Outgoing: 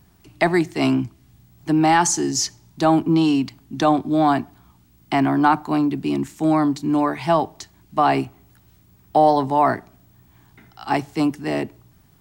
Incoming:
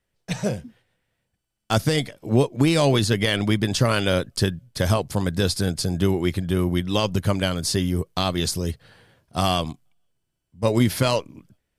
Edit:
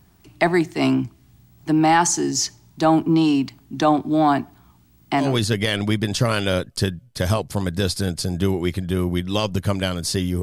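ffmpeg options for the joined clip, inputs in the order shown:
-filter_complex "[0:a]apad=whole_dur=10.42,atrim=end=10.42,atrim=end=5.37,asetpts=PTS-STARTPTS[a];[1:a]atrim=start=2.75:end=8.02,asetpts=PTS-STARTPTS[b];[a][b]acrossfade=d=0.22:c1=tri:c2=tri"

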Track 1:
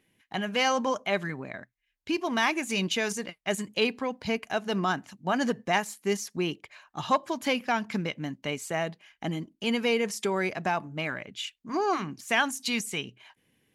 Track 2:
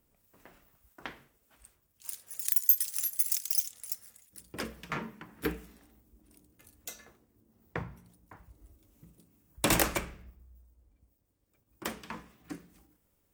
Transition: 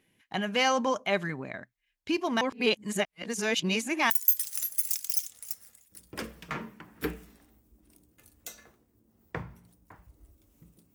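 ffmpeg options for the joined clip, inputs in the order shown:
-filter_complex "[0:a]apad=whole_dur=10.94,atrim=end=10.94,asplit=2[a][b];[a]atrim=end=2.412[c];[b]atrim=start=2.408:end=4.102,asetpts=PTS-STARTPTS,areverse[d];[1:a]atrim=start=2.508:end=9.35[e];[c][d]acrossfade=d=0.004:c1=hsin:c2=hsin[f];[f][e]acrossfade=d=0.004:c1=hsin:c2=hsin"

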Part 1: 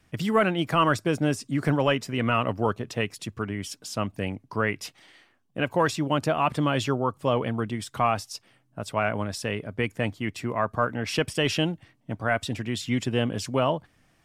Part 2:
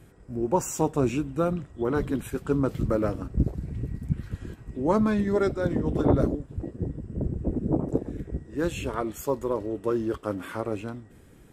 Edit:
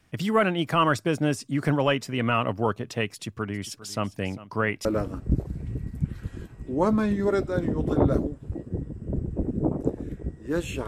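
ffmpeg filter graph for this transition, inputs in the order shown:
-filter_complex "[0:a]asplit=3[a][b][c];[a]afade=t=out:st=3.52:d=0.02[d];[b]aecho=1:1:403:0.141,afade=t=in:st=3.52:d=0.02,afade=t=out:st=4.85:d=0.02[e];[c]afade=t=in:st=4.85:d=0.02[f];[d][e][f]amix=inputs=3:normalize=0,apad=whole_dur=10.87,atrim=end=10.87,atrim=end=4.852[g];[1:a]atrim=start=2.928:end=8.95[h];[g][h]acrossfade=d=0.004:c1=hsin:c2=hsin"

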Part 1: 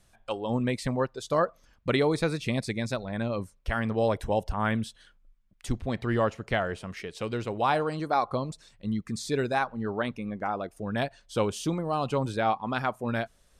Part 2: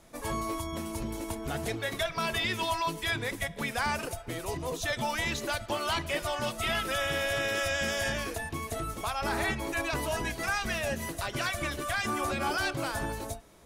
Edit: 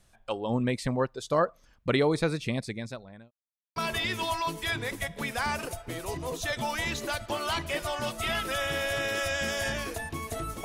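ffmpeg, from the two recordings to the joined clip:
-filter_complex "[0:a]apad=whole_dur=10.64,atrim=end=10.64,asplit=2[a][b];[a]atrim=end=3.31,asetpts=PTS-STARTPTS,afade=t=out:st=2.34:d=0.97[c];[b]atrim=start=3.31:end=3.76,asetpts=PTS-STARTPTS,volume=0[d];[1:a]atrim=start=2.16:end=9.04,asetpts=PTS-STARTPTS,afade=t=in:d=0.004:c=hsin[e];[c][d][e]concat=n=3:v=0:a=1"

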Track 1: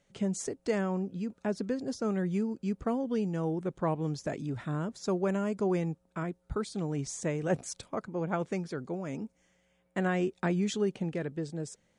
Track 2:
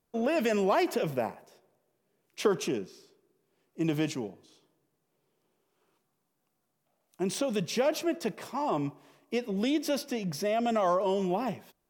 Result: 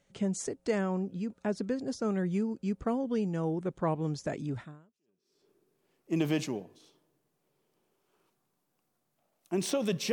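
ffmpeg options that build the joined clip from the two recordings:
-filter_complex "[0:a]apad=whole_dur=10.12,atrim=end=10.12,atrim=end=5.5,asetpts=PTS-STARTPTS[a];[1:a]atrim=start=2.26:end=7.8,asetpts=PTS-STARTPTS[b];[a][b]acrossfade=d=0.92:c1=exp:c2=exp"

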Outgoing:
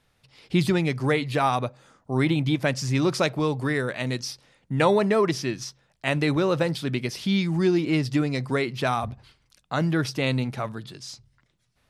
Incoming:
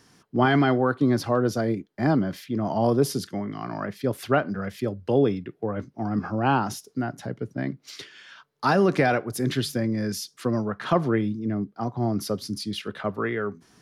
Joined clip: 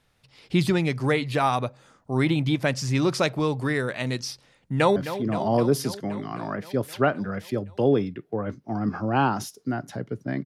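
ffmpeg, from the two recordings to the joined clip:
-filter_complex "[0:a]apad=whole_dur=10.45,atrim=end=10.45,atrim=end=4.962[a];[1:a]atrim=start=2.258:end=7.75[b];[a][b]acrossfade=d=0.004:c1=hsin:c2=hsin,asplit=2[c][d];[d]afade=t=in:st=4.61:d=0.01,afade=t=out:st=4.96:d=0.01,aecho=0:1:260|520|780|1040|1300|1560|1820|2080|2340|2600|2860|3120:0.266073|0.199554|0.149666|0.112249|0.084187|0.0631403|0.0473552|0.0355164|0.0266373|0.019978|0.0149835|0.0112376[e];[c][e]amix=inputs=2:normalize=0"

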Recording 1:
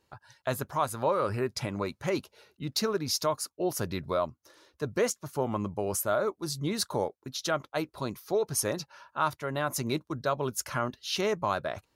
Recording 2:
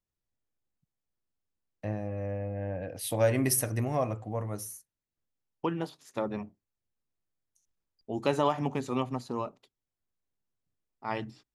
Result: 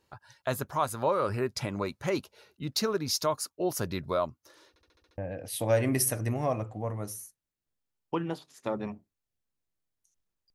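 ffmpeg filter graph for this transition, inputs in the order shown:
-filter_complex "[0:a]apad=whole_dur=10.54,atrim=end=10.54,asplit=7[a][b][c][d][e][f][g];[a]atrim=end=4.762[h];[b]atrim=start=4.688:end=4.762[i];[c]atrim=start=4.688:end=4.762[j];[d]atrim=start=4.688:end=4.762[k];[e]atrim=start=4.688:end=4.762[l];[f]atrim=start=4.688:end=4.762[m];[g]atrim=start=4.688:end=4.762[n];[1:a]atrim=start=2.688:end=8.05[o];[h][i]acrossfade=d=0.004:c1=hsin:c2=hsin[p];[p][j]acrossfade=d=0.004:c1=hsin:c2=hsin[q];[q][k]acrossfade=d=0.004:c1=hsin:c2=hsin[r];[r][l]acrossfade=d=0.004:c1=hsin:c2=hsin[s];[s][m]acrossfade=d=0.004:c1=hsin:c2=hsin[t];[t][n]acrossfade=d=0.004:c1=hsin:c2=hsin[u];[u][o]acrossfade=d=0.004:c1=hsin:c2=hsin"

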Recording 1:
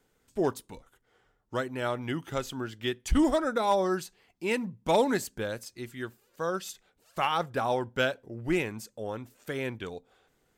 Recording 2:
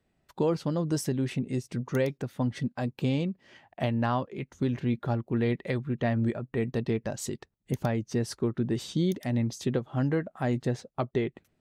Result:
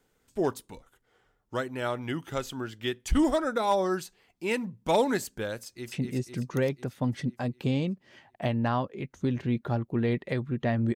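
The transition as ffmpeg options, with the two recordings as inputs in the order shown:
-filter_complex "[0:a]apad=whole_dur=10.95,atrim=end=10.95,atrim=end=5.922[a];[1:a]atrim=start=1.298:end=6.33[b];[a][b]acrossfade=d=0.004:c1=hsin:c2=hsin,asplit=2[c][d];[d]afade=t=in:st=5.62:d=0.01,afade=t=out:st=5.92:d=0.01,aecho=0:1:250|500|750|1000|1250|1500|1750|2000|2250|2500:0.630957|0.410122|0.266579|0.173277|0.11263|0.0732094|0.0475861|0.030931|0.0201051|0.0130683[e];[c][e]amix=inputs=2:normalize=0"

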